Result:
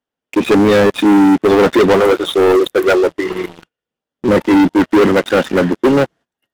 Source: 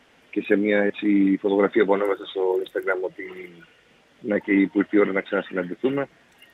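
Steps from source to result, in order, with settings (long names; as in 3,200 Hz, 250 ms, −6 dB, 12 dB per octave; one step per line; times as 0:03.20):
noise gate −48 dBFS, range −17 dB
parametric band 2,200 Hz −9.5 dB 0.68 octaves
leveller curve on the samples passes 5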